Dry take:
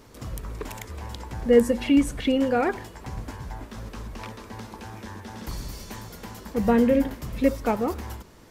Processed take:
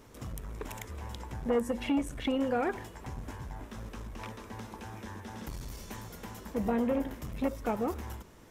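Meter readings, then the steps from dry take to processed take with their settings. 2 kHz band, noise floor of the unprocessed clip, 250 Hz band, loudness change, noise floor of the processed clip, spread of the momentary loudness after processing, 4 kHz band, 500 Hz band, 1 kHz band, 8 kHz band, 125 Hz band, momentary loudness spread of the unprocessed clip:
-7.5 dB, -48 dBFS, -9.5 dB, -11.5 dB, -53 dBFS, 14 LU, -7.5 dB, -9.5 dB, -6.5 dB, -7.5 dB, -6.0 dB, 20 LU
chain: bell 4500 Hz -6 dB 0.29 oct; compressor 2.5:1, threshold -22 dBFS, peak gain reduction 8 dB; core saturation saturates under 450 Hz; gain -4 dB

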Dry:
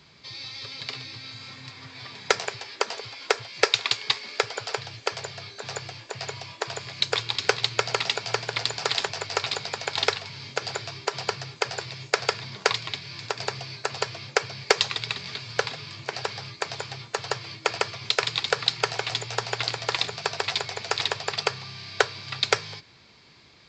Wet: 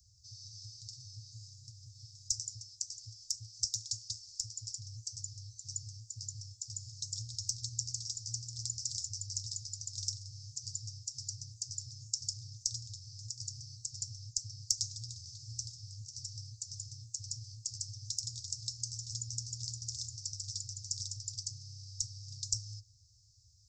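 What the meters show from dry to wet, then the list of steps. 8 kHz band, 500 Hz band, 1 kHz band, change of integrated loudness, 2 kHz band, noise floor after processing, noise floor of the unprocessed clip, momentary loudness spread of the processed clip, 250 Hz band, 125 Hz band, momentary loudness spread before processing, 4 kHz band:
+0.5 dB, under -40 dB, under -40 dB, -11.5 dB, under -40 dB, -61 dBFS, -51 dBFS, 11 LU, under -15 dB, -4.5 dB, 12 LU, -14.0 dB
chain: Chebyshev band-stop 110–5500 Hz, order 5; gain +1 dB

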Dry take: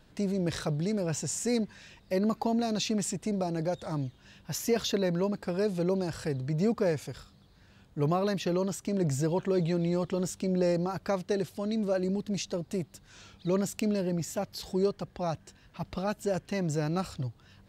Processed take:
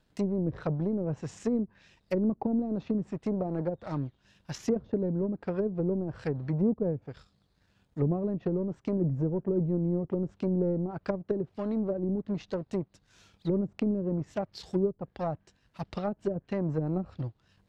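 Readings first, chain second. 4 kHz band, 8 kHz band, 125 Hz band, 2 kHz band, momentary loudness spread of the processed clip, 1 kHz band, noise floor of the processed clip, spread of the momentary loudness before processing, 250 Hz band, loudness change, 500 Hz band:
under -10 dB, under -15 dB, +0.5 dB, -8.0 dB, 7 LU, -5.0 dB, -70 dBFS, 8 LU, +0.5 dB, -0.5 dB, -1.5 dB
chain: power-law curve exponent 1.4; treble ducked by the level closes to 370 Hz, closed at -28.5 dBFS; gain +5 dB

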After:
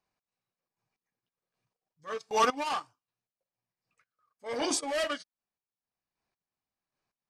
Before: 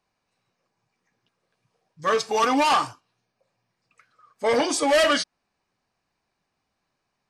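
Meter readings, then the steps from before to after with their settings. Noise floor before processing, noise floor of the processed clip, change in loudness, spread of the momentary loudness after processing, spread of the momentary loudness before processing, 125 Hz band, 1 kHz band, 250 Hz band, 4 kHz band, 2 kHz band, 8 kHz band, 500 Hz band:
-79 dBFS, under -85 dBFS, -9.5 dB, 13 LU, 10 LU, under -10 dB, -9.0 dB, -11.0 dB, -10.0 dB, -11.0 dB, -6.0 dB, -11.0 dB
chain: chopper 1.3 Hz, depth 60%, duty 25%; transient shaper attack -7 dB, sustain -11 dB; upward expander 1.5:1, over -36 dBFS

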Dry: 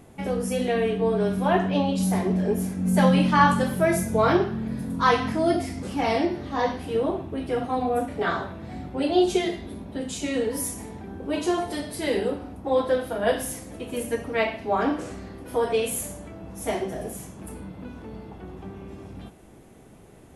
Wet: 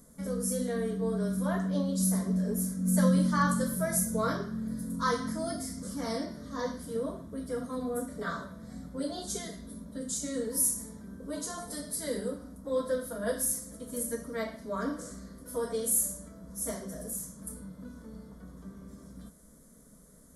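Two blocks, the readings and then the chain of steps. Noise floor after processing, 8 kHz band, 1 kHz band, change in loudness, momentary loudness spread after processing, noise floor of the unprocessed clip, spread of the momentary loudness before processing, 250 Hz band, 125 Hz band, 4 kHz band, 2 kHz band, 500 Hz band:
-56 dBFS, +4.0 dB, -12.0 dB, -7.0 dB, 17 LU, -49 dBFS, 18 LU, -6.0 dB, -5.5 dB, -9.5 dB, -10.5 dB, -10.0 dB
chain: tone controls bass +6 dB, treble +13 dB; fixed phaser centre 530 Hz, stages 8; gain -8 dB

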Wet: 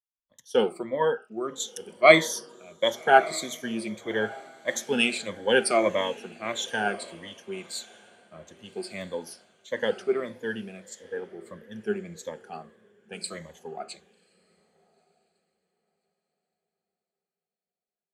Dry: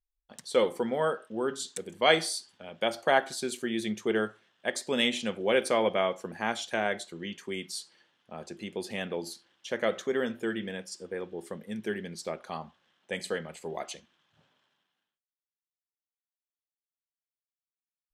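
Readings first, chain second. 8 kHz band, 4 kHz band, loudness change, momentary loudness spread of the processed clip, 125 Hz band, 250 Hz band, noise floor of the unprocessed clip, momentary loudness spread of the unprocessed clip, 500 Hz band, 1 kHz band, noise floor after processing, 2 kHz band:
+4.0 dB, +1.5 dB, +4.5 dB, 21 LU, +1.0 dB, +1.0 dB, under -85 dBFS, 14 LU, +3.5 dB, +5.0 dB, under -85 dBFS, +5.0 dB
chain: moving spectral ripple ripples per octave 1.1, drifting -1.6 Hz, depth 19 dB; diffused feedback echo 1.218 s, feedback 43%, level -15 dB; three-band expander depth 70%; gain -3.5 dB

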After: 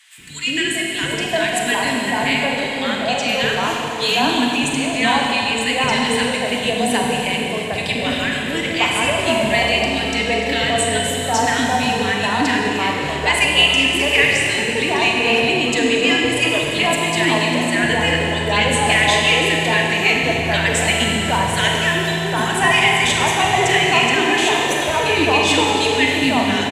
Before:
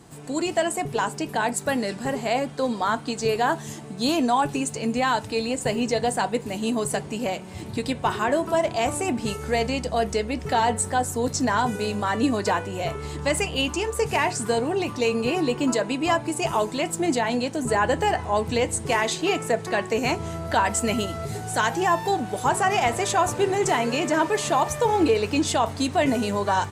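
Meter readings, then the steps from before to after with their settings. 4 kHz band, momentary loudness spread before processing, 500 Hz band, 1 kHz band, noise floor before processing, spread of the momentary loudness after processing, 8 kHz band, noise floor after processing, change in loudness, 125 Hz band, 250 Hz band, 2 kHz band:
+14.5 dB, 5 LU, +3.5 dB, +4.0 dB, -37 dBFS, 6 LU, +6.0 dB, -23 dBFS, +8.0 dB, +6.0 dB, +4.5 dB, +13.0 dB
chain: band shelf 2500 Hz +10.5 dB 1.3 oct; three bands offset in time highs, lows, mids 0.18/0.76 s, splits 420/1400 Hz; Schroeder reverb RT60 3.1 s, combs from 33 ms, DRR -0.5 dB; downsampling 32000 Hz; gain +2.5 dB

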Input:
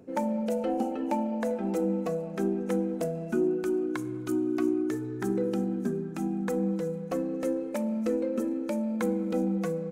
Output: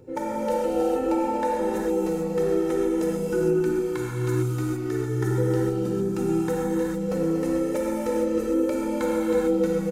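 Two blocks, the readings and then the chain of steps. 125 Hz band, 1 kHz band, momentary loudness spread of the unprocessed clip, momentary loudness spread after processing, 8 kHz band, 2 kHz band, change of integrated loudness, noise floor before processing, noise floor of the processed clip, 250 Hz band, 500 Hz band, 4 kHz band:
+8.5 dB, +6.5 dB, 4 LU, 4 LU, +7.5 dB, +5.5 dB, +5.0 dB, -36 dBFS, -29 dBFS, +3.0 dB, +6.5 dB, n/a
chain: tone controls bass +8 dB, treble +2 dB; comb 2.2 ms, depth 83%; compressor 2:1, threshold -29 dBFS, peak gain reduction 6.5 dB; non-linear reverb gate 0.48 s flat, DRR -6.5 dB; gain -1 dB

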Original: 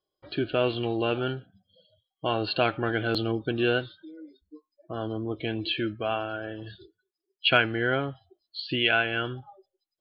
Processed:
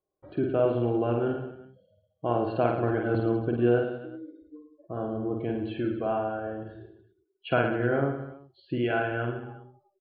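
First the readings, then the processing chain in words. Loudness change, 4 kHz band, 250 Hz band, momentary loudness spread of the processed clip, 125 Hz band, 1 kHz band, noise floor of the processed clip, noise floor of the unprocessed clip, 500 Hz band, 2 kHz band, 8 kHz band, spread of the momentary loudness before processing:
-0.5 dB, -17.5 dB, +2.0 dB, 15 LU, +2.5 dB, -0.5 dB, -77 dBFS, under -85 dBFS, +2.0 dB, -7.0 dB, n/a, 16 LU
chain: LPF 1000 Hz 12 dB/oct; on a send: reverse bouncing-ball echo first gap 50 ms, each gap 1.2×, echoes 5

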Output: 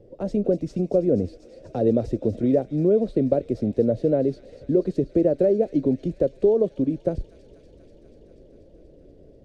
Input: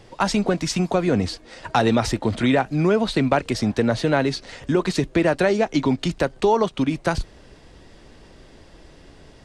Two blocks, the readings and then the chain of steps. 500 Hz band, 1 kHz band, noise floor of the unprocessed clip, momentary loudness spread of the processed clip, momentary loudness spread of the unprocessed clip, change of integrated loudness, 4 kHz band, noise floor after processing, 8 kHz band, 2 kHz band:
+1.0 dB, -15.5 dB, -49 dBFS, 7 LU, 6 LU, -1.5 dB, under -20 dB, -51 dBFS, under -20 dB, under -25 dB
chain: EQ curve 180 Hz 0 dB, 560 Hz +7 dB, 920 Hz -22 dB; on a send: thin delay 0.242 s, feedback 80%, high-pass 2600 Hz, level -8 dB; on the sum: gain -4 dB

